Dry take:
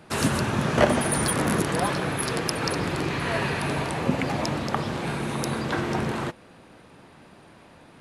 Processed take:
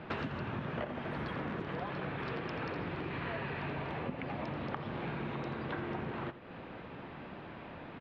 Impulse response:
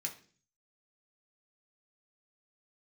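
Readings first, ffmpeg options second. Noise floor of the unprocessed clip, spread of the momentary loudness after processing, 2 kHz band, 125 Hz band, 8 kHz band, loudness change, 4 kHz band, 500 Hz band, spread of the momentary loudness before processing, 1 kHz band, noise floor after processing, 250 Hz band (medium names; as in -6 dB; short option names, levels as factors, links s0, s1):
-51 dBFS, 9 LU, -12.0 dB, -12.0 dB, under -40 dB, -14.0 dB, -17.5 dB, -13.0 dB, 7 LU, -12.5 dB, -48 dBFS, -12.5 dB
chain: -af "lowpass=f=3200:w=0.5412,lowpass=f=3200:w=1.3066,acompressor=threshold=0.0112:ratio=12,aecho=1:1:84:0.211,volume=1.5"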